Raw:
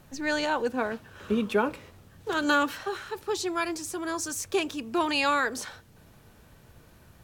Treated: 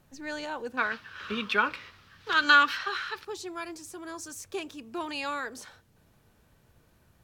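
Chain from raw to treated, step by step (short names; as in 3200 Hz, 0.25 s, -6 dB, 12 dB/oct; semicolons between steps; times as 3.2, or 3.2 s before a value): 0.77–3.25 band shelf 2400 Hz +15.5 dB 2.7 oct; gain -8.5 dB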